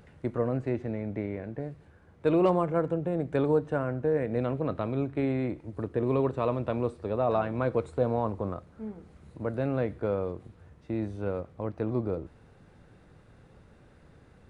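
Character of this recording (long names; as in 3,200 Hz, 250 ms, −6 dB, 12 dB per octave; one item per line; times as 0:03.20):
background noise floor −57 dBFS
spectral slope −6.5 dB per octave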